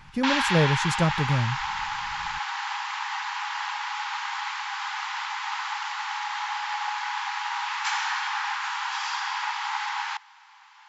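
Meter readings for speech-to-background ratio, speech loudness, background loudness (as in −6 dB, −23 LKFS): 3.5 dB, −25.5 LKFS, −29.0 LKFS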